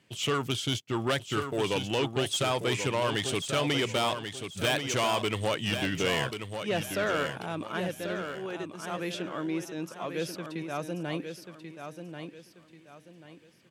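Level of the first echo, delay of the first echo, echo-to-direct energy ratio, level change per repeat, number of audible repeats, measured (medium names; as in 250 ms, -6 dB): -7.5 dB, 1087 ms, -7.0 dB, -10.0 dB, 3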